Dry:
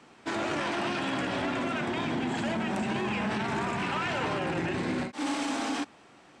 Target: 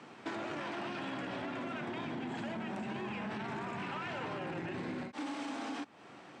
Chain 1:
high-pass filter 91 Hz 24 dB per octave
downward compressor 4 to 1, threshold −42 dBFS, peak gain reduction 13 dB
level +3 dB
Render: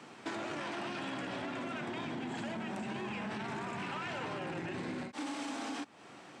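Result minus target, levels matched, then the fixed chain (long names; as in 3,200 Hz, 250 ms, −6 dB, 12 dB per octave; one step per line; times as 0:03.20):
8,000 Hz band +5.5 dB
high-pass filter 91 Hz 24 dB per octave
downward compressor 4 to 1, threshold −42 dBFS, peak gain reduction 13 dB
high-shelf EQ 6,500 Hz −11.5 dB
level +3 dB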